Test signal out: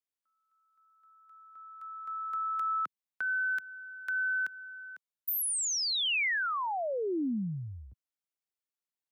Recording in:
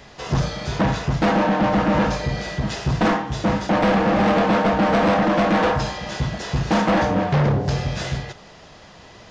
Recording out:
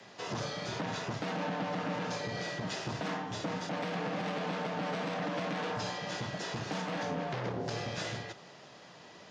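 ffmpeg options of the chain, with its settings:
-filter_complex "[0:a]highpass=f=160:w=0.5412,highpass=f=160:w=1.3066,acrossover=split=260|2300[a][b][c];[a]acompressor=threshold=-31dB:ratio=4[d];[b]acompressor=threshold=-25dB:ratio=4[e];[c]acompressor=threshold=-23dB:ratio=4[f];[d][e][f]amix=inputs=3:normalize=0,alimiter=limit=-18dB:level=0:latency=1:release=93,afreqshift=-22,volume=-7.5dB"

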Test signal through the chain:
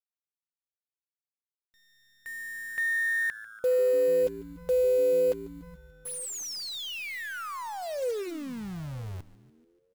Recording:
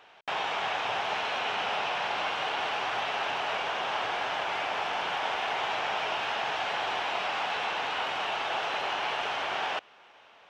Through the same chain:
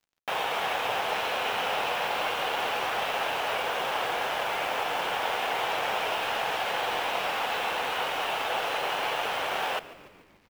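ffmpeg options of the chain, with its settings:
-filter_complex "[0:a]equalizer=f=500:t=o:w=0.27:g=7.5,acrusher=bits=8:dc=4:mix=0:aa=0.000001,asplit=2[a][b];[b]adelay=932.9,volume=-23dB,highshelf=f=4k:g=-21[c];[a][c]amix=inputs=2:normalize=0,aeval=exprs='sgn(val(0))*max(abs(val(0))-0.00376,0)':c=same,asplit=2[d][e];[e]asplit=6[f][g][h][i][j][k];[f]adelay=145,afreqshift=-110,volume=-17.5dB[l];[g]adelay=290,afreqshift=-220,volume=-21.9dB[m];[h]adelay=435,afreqshift=-330,volume=-26.4dB[n];[i]adelay=580,afreqshift=-440,volume=-30.8dB[o];[j]adelay=725,afreqshift=-550,volume=-35.2dB[p];[k]adelay=870,afreqshift=-660,volume=-39.7dB[q];[l][m][n][o][p][q]amix=inputs=6:normalize=0[r];[d][r]amix=inputs=2:normalize=0,volume=2dB"

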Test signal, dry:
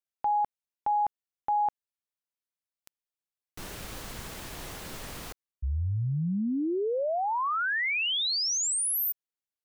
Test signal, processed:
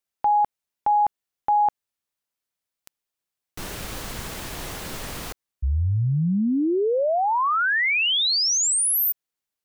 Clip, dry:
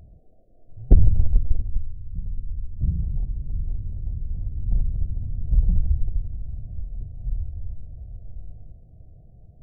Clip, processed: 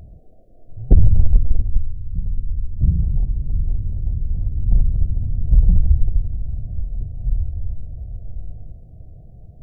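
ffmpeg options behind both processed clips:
-af "alimiter=level_in=8.5dB:limit=-1dB:release=50:level=0:latency=1,volume=-1.5dB"

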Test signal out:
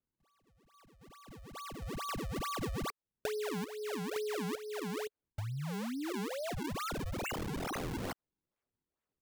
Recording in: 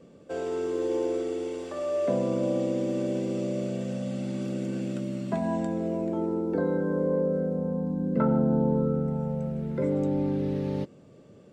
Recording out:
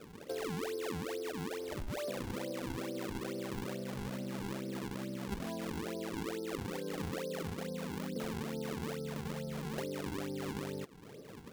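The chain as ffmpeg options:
-af "equalizer=f=430:t=o:w=0.41:g=8,acompressor=threshold=-36dB:ratio=8,acrusher=samples=41:mix=1:aa=0.000001:lfo=1:lforange=65.6:lforate=2.3,volume=-1dB"

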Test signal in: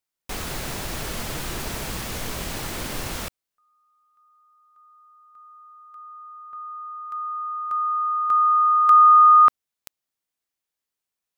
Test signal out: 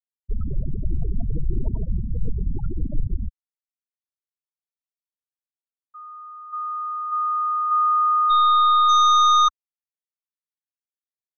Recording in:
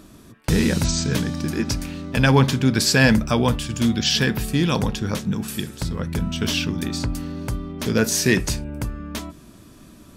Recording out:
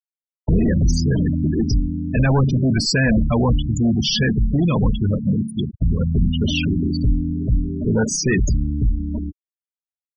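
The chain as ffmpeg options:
-af "aeval=exprs='(tanh(12.6*val(0)+0.1)-tanh(0.1))/12.6':c=same,afftfilt=real='re*gte(hypot(re,im),0.0891)':imag='im*gte(hypot(re,im),0.0891)':win_size=1024:overlap=0.75,lowshelf=f=79:g=8.5,volume=7.5dB"

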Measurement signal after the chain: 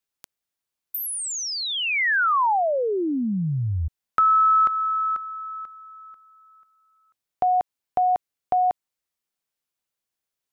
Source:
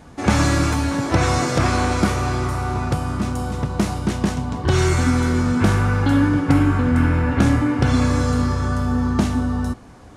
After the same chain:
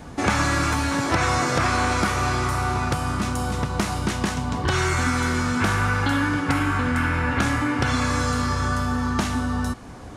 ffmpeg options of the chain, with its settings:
-filter_complex "[0:a]acrossover=split=930|2000[a][b][c];[a]acompressor=threshold=-28dB:ratio=4[d];[b]acompressor=threshold=-26dB:ratio=4[e];[c]acompressor=threshold=-35dB:ratio=4[f];[d][e][f]amix=inputs=3:normalize=0,volume=4.5dB"

